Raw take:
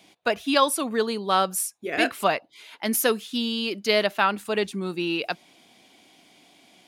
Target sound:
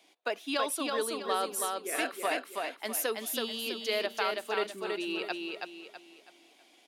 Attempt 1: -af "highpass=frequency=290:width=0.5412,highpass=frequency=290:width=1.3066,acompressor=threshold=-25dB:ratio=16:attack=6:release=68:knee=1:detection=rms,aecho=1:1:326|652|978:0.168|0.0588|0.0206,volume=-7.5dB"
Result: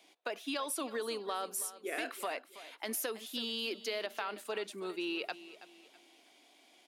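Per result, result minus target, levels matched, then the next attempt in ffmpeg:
echo-to-direct −12 dB; downward compressor: peak gain reduction +6.5 dB
-af "highpass=frequency=290:width=0.5412,highpass=frequency=290:width=1.3066,acompressor=threshold=-25dB:ratio=16:attack=6:release=68:knee=1:detection=rms,aecho=1:1:326|652|978|1304|1630:0.668|0.234|0.0819|0.0287|0.01,volume=-7.5dB"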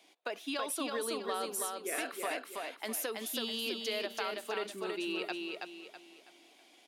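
downward compressor: peak gain reduction +6.5 dB
-af "highpass=frequency=290:width=0.5412,highpass=frequency=290:width=1.3066,acompressor=threshold=-18dB:ratio=16:attack=6:release=68:knee=1:detection=rms,aecho=1:1:326|652|978|1304|1630:0.668|0.234|0.0819|0.0287|0.01,volume=-7.5dB"

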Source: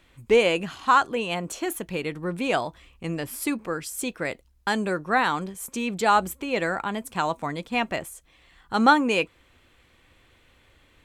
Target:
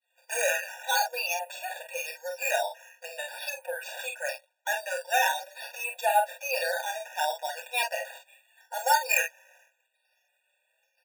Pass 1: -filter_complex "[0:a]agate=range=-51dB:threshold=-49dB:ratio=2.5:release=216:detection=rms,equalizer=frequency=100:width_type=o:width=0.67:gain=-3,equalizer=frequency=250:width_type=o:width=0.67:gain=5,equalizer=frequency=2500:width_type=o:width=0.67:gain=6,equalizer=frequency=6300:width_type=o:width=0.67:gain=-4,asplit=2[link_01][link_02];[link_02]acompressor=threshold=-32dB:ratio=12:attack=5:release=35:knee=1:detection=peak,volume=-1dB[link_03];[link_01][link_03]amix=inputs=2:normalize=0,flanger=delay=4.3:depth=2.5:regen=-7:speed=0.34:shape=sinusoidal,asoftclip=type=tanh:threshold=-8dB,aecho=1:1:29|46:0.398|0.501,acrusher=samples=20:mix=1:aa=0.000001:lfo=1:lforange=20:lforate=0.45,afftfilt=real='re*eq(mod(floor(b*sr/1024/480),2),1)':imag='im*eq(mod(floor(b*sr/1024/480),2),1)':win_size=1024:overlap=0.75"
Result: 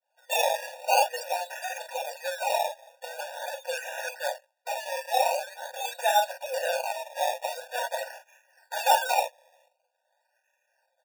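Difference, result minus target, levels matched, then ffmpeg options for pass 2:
downward compressor: peak gain reduction −10 dB; sample-and-hold swept by an LFO: distortion +8 dB
-filter_complex "[0:a]agate=range=-51dB:threshold=-49dB:ratio=2.5:release=216:detection=rms,equalizer=frequency=100:width_type=o:width=0.67:gain=-3,equalizer=frequency=250:width_type=o:width=0.67:gain=5,equalizer=frequency=2500:width_type=o:width=0.67:gain=6,equalizer=frequency=6300:width_type=o:width=0.67:gain=-4,asplit=2[link_01][link_02];[link_02]acompressor=threshold=-43dB:ratio=12:attack=5:release=35:knee=1:detection=peak,volume=-1dB[link_03];[link_01][link_03]amix=inputs=2:normalize=0,flanger=delay=4.3:depth=2.5:regen=-7:speed=0.34:shape=sinusoidal,asoftclip=type=tanh:threshold=-8dB,aecho=1:1:29|46:0.398|0.501,acrusher=samples=7:mix=1:aa=0.000001:lfo=1:lforange=7:lforate=0.45,afftfilt=real='re*eq(mod(floor(b*sr/1024/480),2),1)':imag='im*eq(mod(floor(b*sr/1024/480),2),1)':win_size=1024:overlap=0.75"

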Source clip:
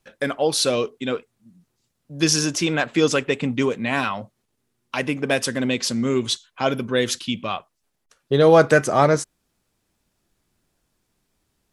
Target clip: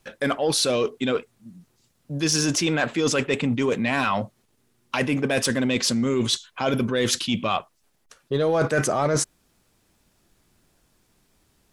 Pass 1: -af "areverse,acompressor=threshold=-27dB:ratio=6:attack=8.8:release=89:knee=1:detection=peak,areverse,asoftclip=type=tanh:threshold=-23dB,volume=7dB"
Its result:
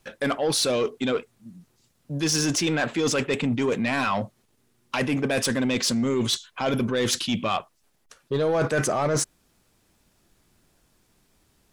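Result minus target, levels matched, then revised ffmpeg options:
soft clipping: distortion +10 dB
-af "areverse,acompressor=threshold=-27dB:ratio=6:attack=8.8:release=89:knee=1:detection=peak,areverse,asoftclip=type=tanh:threshold=-16dB,volume=7dB"

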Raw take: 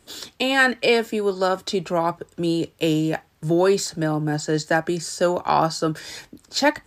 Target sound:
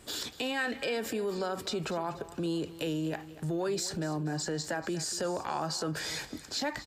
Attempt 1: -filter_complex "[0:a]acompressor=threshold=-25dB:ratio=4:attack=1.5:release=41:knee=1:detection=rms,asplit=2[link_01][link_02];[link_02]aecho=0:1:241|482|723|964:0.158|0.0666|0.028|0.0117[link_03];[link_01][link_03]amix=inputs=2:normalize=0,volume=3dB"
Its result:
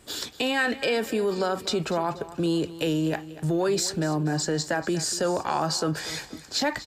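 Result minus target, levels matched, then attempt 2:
downward compressor: peak gain reduction −7.5 dB
-filter_complex "[0:a]acompressor=threshold=-35dB:ratio=4:attack=1.5:release=41:knee=1:detection=rms,asplit=2[link_01][link_02];[link_02]aecho=0:1:241|482|723|964:0.158|0.0666|0.028|0.0117[link_03];[link_01][link_03]amix=inputs=2:normalize=0,volume=3dB"

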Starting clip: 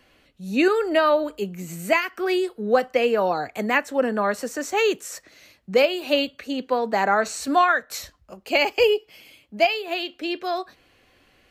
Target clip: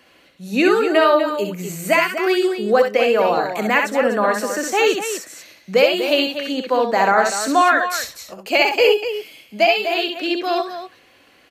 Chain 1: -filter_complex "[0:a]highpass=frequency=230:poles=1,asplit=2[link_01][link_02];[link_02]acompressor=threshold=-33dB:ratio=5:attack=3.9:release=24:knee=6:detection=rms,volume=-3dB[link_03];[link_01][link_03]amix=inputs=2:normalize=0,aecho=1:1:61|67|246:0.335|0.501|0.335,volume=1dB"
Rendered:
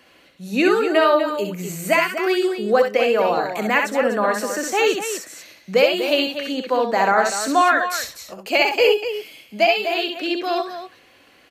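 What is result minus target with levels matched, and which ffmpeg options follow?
downward compressor: peak gain reduction +8.5 dB
-filter_complex "[0:a]highpass=frequency=230:poles=1,asplit=2[link_01][link_02];[link_02]acompressor=threshold=-22.5dB:ratio=5:attack=3.9:release=24:knee=6:detection=rms,volume=-3dB[link_03];[link_01][link_03]amix=inputs=2:normalize=0,aecho=1:1:61|67|246:0.335|0.501|0.335,volume=1dB"

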